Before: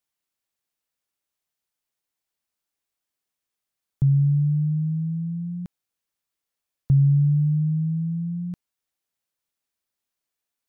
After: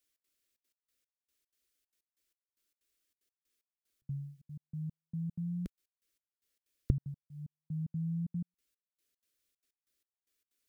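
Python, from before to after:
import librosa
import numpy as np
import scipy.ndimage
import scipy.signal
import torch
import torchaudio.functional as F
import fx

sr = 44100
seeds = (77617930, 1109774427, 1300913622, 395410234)

y = fx.peak_eq(x, sr, hz=65.0, db=4.0, octaves=2.8)
y = fx.fixed_phaser(y, sr, hz=350.0, stages=4)
y = fx.step_gate(y, sr, bpm=187, pattern='xx.xxxx.x..xx...', floor_db=-60.0, edge_ms=4.5)
y = y * 10.0 ** (3.5 / 20.0)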